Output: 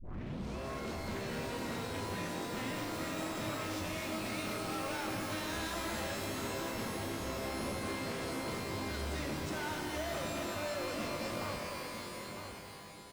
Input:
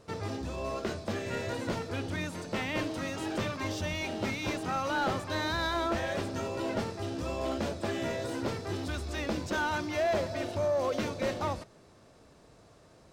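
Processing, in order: tape start at the beginning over 0.56 s; bell 200 Hz +4.5 dB 1.8 oct; overloaded stage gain 35 dB; on a send: echo 0.953 s -8 dB; on the sum: shimmer reverb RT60 2.2 s, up +12 st, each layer -2 dB, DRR 4 dB; gain -4.5 dB

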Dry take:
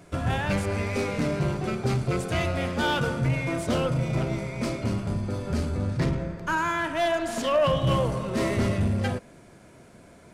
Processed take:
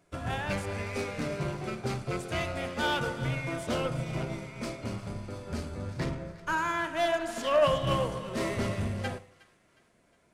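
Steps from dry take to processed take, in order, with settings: bell 120 Hz -5 dB 2.9 oct; split-band echo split 1100 Hz, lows 82 ms, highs 0.362 s, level -12.5 dB; upward expander 1.5:1, over -48 dBFS

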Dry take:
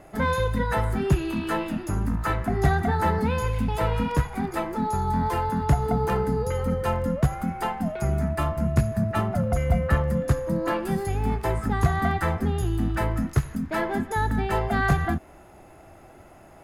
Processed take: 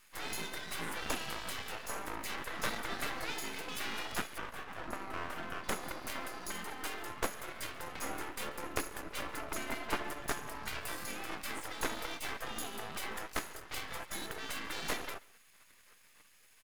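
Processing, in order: spectral gate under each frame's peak -20 dB weak; 4.38–5.64 resonant high shelf 2100 Hz -12.5 dB, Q 1.5; half-wave rectifier; on a send: echo 0.139 s -23.5 dB; on the sum: gain +4.5 dB

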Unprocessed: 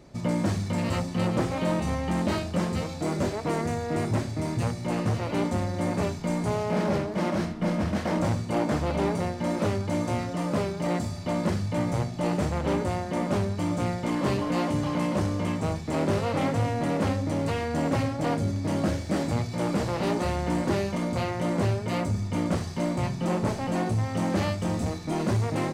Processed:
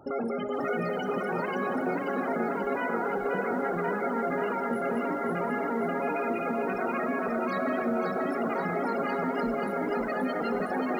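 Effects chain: limiter -22.5 dBFS, peak gain reduction 8.5 dB; loudest bins only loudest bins 16; on a send at -14 dB: reverb RT60 3.3 s, pre-delay 0.14 s; on the sum: speed mistake 33 rpm record played at 78 rpm; lo-fi delay 0.534 s, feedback 55%, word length 10-bit, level -3.5 dB

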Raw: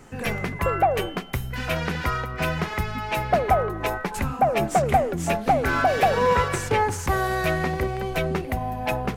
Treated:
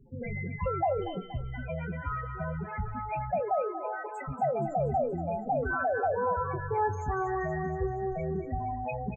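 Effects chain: 3.4–4.28 HPF 330 Hz 24 dB/oct; limiter -15 dBFS, peak gain reduction 7 dB; loudest bins only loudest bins 8; doubler 21 ms -12.5 dB; thinning echo 0.237 s, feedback 64%, high-pass 720 Hz, level -9 dB; gain -4.5 dB

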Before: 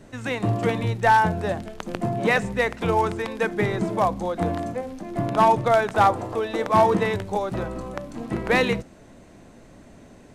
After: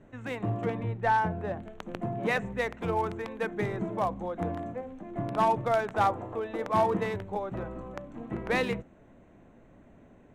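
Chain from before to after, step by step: Wiener smoothing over 9 samples; 0.64–1.61 high shelf 3300 Hz -> 6400 Hz -11 dB; gain -7.5 dB

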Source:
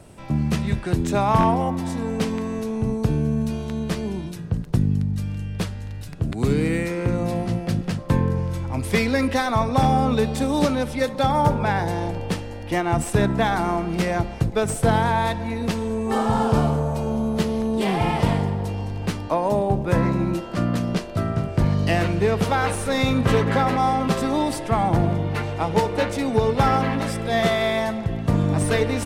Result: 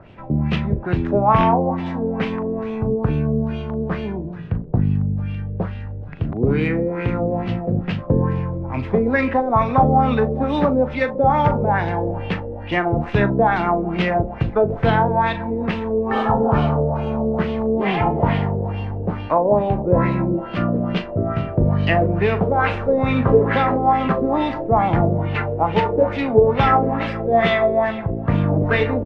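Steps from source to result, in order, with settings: median filter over 5 samples; LFO low-pass sine 2.3 Hz 460–3000 Hz; doubler 39 ms -12.5 dB; gain +1 dB

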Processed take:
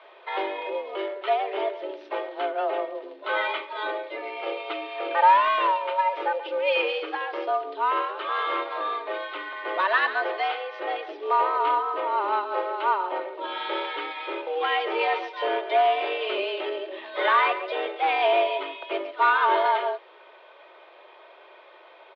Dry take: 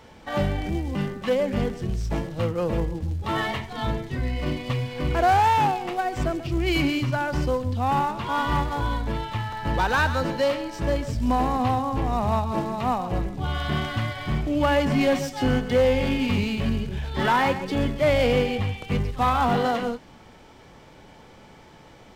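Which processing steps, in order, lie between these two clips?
mistuned SSB +190 Hz 220–3500 Hz; comb 3.3 ms, depth 49%

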